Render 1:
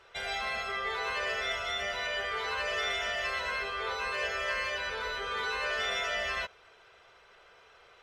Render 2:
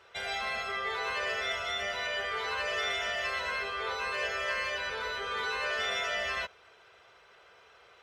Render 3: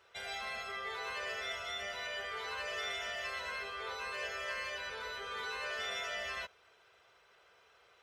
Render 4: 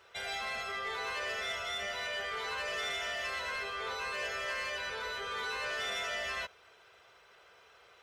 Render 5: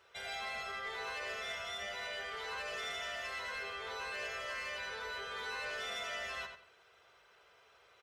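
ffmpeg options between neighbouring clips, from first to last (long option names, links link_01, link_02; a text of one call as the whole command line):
ffmpeg -i in.wav -af "highpass=59" out.wav
ffmpeg -i in.wav -af "highshelf=frequency=7200:gain=7.5,volume=-7.5dB" out.wav
ffmpeg -i in.wav -af "asoftclip=type=tanh:threshold=-35dB,volume=5dB" out.wav
ffmpeg -i in.wav -filter_complex "[0:a]asplit=2[link_01][link_02];[link_02]adelay=92,lowpass=frequency=5000:poles=1,volume=-7dB,asplit=2[link_03][link_04];[link_04]adelay=92,lowpass=frequency=5000:poles=1,volume=0.26,asplit=2[link_05][link_06];[link_06]adelay=92,lowpass=frequency=5000:poles=1,volume=0.26[link_07];[link_01][link_03][link_05][link_07]amix=inputs=4:normalize=0,volume=-5dB" out.wav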